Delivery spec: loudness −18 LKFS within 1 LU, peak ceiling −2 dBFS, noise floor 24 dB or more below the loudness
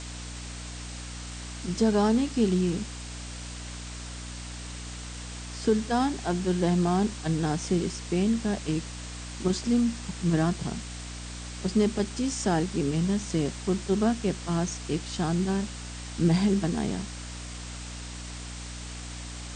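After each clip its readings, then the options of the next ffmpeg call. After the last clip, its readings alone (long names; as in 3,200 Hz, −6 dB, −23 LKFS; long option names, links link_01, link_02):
mains hum 60 Hz; hum harmonics up to 300 Hz; level of the hum −38 dBFS; background noise floor −39 dBFS; target noise floor −53 dBFS; integrated loudness −29.0 LKFS; sample peak −12.0 dBFS; target loudness −18.0 LKFS
→ -af "bandreject=frequency=60:width_type=h:width=6,bandreject=frequency=120:width_type=h:width=6,bandreject=frequency=180:width_type=h:width=6,bandreject=frequency=240:width_type=h:width=6,bandreject=frequency=300:width_type=h:width=6"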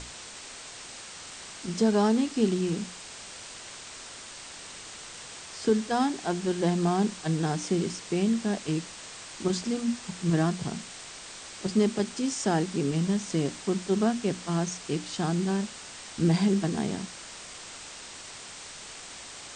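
mains hum none found; background noise floor −44 dBFS; target noise floor −52 dBFS
→ -af "afftdn=noise_reduction=8:noise_floor=-44"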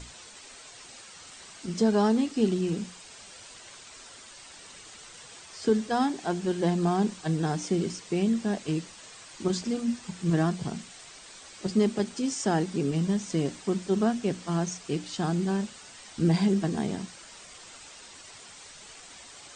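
background noise floor −48 dBFS; target noise floor −52 dBFS
→ -af "afftdn=noise_reduction=6:noise_floor=-48"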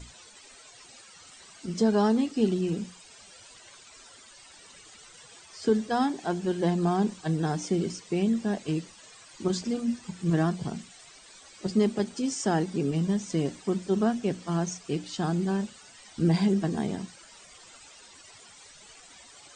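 background noise floor −52 dBFS; integrated loudness −28.0 LKFS; sample peak −12.5 dBFS; target loudness −18.0 LKFS
→ -af "volume=10dB"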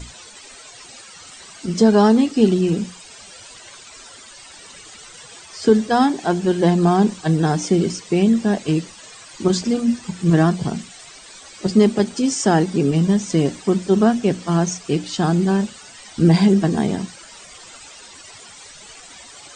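integrated loudness −18.0 LKFS; sample peak −2.5 dBFS; background noise floor −42 dBFS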